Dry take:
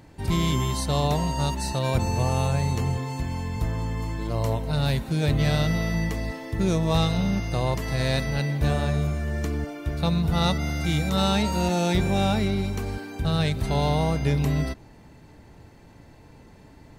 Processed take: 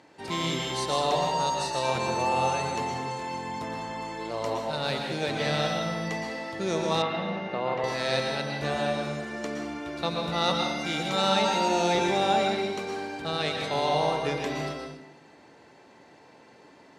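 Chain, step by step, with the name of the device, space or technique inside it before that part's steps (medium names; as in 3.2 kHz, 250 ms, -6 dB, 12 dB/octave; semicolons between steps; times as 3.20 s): supermarket ceiling speaker (band-pass 350–6700 Hz; reverberation RT60 0.85 s, pre-delay 110 ms, DRR 2 dB); 7.02–7.84 s: Chebyshev band-pass 150–2200 Hz, order 2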